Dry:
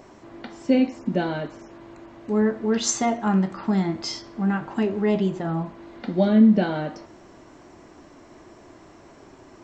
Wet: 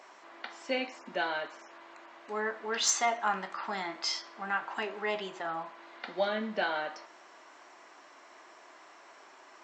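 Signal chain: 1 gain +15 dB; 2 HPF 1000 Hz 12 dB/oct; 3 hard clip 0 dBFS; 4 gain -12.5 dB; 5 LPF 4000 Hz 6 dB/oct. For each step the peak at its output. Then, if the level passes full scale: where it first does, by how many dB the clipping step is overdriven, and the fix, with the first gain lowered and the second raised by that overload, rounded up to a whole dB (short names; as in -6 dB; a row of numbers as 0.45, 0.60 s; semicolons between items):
+8.5, +4.0, 0.0, -12.5, -15.5 dBFS; step 1, 4.0 dB; step 1 +11 dB, step 4 -8.5 dB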